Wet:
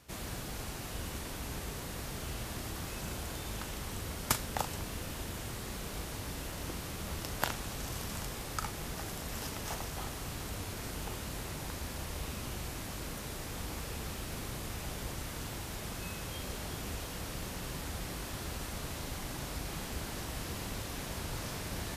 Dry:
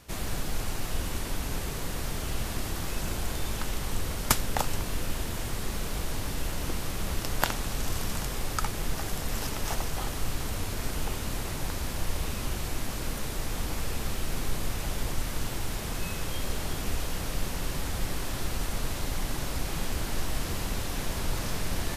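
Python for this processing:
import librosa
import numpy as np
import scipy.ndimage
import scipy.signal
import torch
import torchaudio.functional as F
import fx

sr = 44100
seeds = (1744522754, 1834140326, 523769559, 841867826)

y = scipy.signal.sosfilt(scipy.signal.butter(2, 48.0, 'highpass', fs=sr, output='sos'), x)
y = fx.doubler(y, sr, ms=39.0, db=-11.5)
y = y * 10.0 ** (-6.0 / 20.0)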